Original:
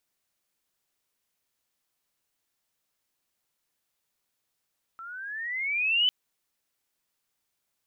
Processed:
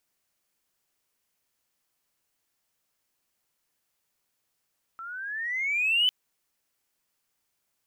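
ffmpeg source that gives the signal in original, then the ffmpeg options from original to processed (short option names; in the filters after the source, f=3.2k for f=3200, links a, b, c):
-f lavfi -i "aevalsrc='pow(10,(-19+20*(t/1.1-1))/20)*sin(2*PI*1320*1.1/(14.5*log(2)/12)*(exp(14.5*log(2)/12*t/1.1)-1))':d=1.1:s=44100"
-filter_complex "[0:a]equalizer=f=3.7k:w=4.9:g=-3,asplit=2[a][b];[b]asoftclip=type=hard:threshold=-31.5dB,volume=-11dB[c];[a][c]amix=inputs=2:normalize=0"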